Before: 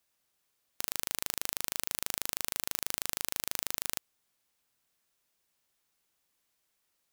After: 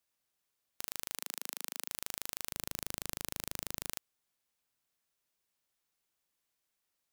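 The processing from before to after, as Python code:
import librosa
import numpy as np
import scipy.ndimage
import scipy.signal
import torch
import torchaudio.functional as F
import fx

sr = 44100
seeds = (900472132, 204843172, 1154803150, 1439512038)

y = fx.highpass(x, sr, hz=230.0, slope=24, at=(1.17, 1.89))
y = fx.low_shelf(y, sr, hz=390.0, db=11.5, at=(2.52, 3.9))
y = y * 10.0 ** (-6.0 / 20.0)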